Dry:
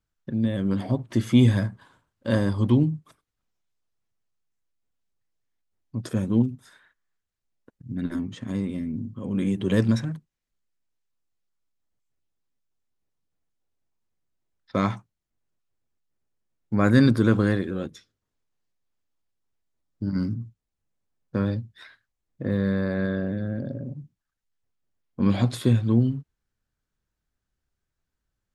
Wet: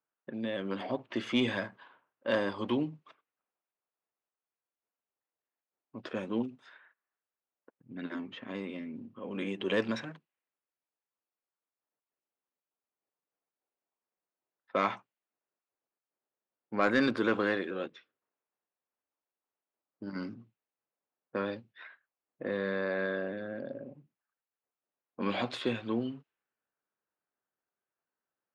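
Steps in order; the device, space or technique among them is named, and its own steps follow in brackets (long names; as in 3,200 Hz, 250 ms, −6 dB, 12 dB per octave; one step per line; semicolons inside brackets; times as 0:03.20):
low-pass that shuts in the quiet parts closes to 1,400 Hz, open at −21 dBFS
intercom (band-pass filter 450–3,700 Hz; parametric band 2,700 Hz +6 dB 0.41 octaves; soft clipping −16 dBFS, distortion −21 dB)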